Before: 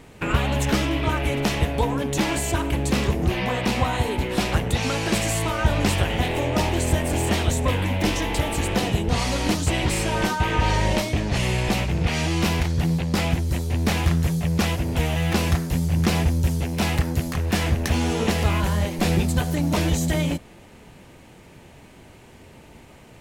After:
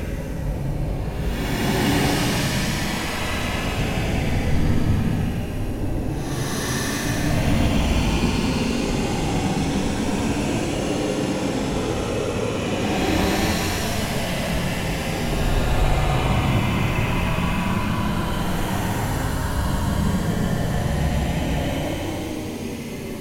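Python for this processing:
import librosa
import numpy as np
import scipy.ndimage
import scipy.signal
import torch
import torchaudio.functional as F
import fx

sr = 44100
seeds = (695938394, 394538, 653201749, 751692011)

y = fx.whisperise(x, sr, seeds[0])
y = fx.paulstretch(y, sr, seeds[1], factor=15.0, window_s=0.1, from_s=17.41)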